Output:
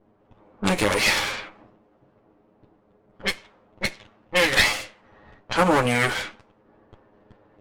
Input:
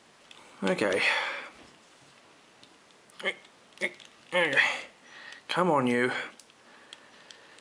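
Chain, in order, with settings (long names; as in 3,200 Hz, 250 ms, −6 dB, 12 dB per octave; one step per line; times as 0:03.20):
lower of the sound and its delayed copy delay 9.6 ms
high-shelf EQ 5,400 Hz +8 dB
low-pass that shuts in the quiet parts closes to 490 Hz, open at −26.5 dBFS
level +5.5 dB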